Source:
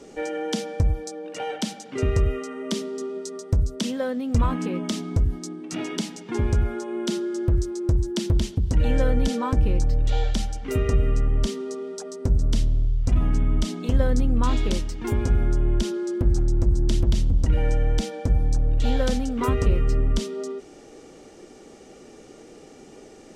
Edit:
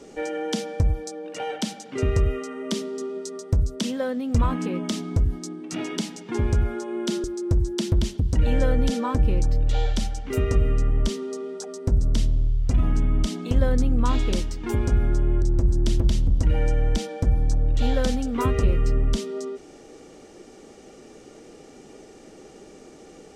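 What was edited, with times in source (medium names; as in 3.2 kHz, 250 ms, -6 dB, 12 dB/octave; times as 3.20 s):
7.24–7.62 s: delete
15.80–16.45 s: delete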